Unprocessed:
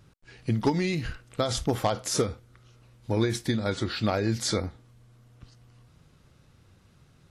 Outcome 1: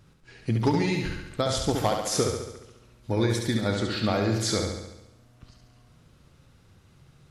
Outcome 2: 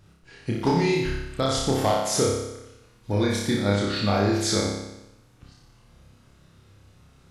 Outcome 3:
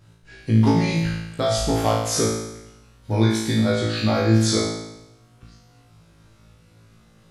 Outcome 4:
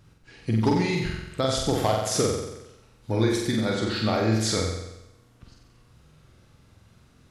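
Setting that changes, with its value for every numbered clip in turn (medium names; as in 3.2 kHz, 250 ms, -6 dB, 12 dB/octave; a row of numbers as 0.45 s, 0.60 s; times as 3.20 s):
flutter echo, walls apart: 11.9 m, 5.1 m, 3.1 m, 7.8 m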